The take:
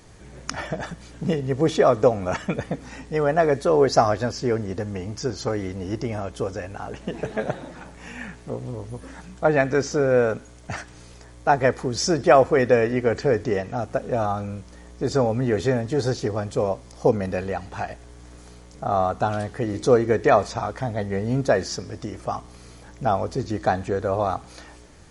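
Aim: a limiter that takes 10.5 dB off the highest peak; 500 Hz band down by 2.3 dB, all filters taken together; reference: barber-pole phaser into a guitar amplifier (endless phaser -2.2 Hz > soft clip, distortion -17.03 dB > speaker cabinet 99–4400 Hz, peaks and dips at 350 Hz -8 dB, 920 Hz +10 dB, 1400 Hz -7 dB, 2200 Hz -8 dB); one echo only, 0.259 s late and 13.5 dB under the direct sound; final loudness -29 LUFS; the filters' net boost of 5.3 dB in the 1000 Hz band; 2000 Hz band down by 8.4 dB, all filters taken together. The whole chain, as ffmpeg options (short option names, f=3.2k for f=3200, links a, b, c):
-filter_complex "[0:a]equalizer=f=500:t=o:g=-3.5,equalizer=f=1k:t=o:g=6,equalizer=f=2k:t=o:g=-7.5,alimiter=limit=-13.5dB:level=0:latency=1,aecho=1:1:259:0.211,asplit=2[a][b];[b]afreqshift=-2.2[c];[a][c]amix=inputs=2:normalize=1,asoftclip=threshold=-19.5dB,highpass=99,equalizer=f=350:t=q:w=4:g=-8,equalizer=f=920:t=q:w=4:g=10,equalizer=f=1.4k:t=q:w=4:g=-7,equalizer=f=2.2k:t=q:w=4:g=-8,lowpass=f=4.4k:w=0.5412,lowpass=f=4.4k:w=1.3066,volume=2.5dB"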